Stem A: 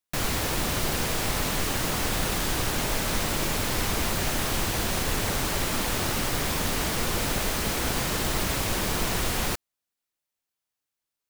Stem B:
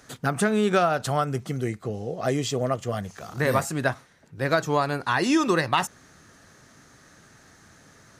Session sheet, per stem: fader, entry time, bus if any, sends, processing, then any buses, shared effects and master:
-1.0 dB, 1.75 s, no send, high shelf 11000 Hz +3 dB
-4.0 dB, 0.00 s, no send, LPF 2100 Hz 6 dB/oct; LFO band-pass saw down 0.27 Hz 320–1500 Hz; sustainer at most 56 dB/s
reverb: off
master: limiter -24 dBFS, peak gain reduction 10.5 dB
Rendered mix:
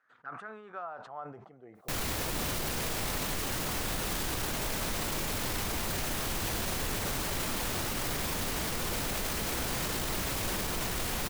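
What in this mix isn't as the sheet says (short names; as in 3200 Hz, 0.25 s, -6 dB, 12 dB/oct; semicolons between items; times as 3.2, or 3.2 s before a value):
stem A -1.0 dB -> +6.0 dB; stem B -4.0 dB -> -12.0 dB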